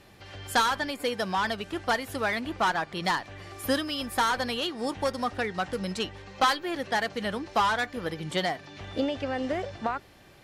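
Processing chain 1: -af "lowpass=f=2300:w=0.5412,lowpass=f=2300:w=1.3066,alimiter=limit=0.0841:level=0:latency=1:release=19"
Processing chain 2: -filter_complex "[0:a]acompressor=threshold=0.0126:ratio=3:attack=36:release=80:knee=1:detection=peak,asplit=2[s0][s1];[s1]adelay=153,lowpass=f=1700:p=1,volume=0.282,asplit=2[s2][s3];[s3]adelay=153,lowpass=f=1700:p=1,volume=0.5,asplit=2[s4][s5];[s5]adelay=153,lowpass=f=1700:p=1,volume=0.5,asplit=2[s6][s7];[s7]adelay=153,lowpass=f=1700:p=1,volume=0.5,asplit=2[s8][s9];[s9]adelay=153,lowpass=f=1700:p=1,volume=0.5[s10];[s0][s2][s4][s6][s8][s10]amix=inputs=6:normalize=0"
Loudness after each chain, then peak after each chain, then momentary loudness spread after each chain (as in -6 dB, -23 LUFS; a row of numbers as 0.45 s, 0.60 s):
-32.0 LUFS, -35.5 LUFS; -21.5 dBFS, -18.0 dBFS; 6 LU, 4 LU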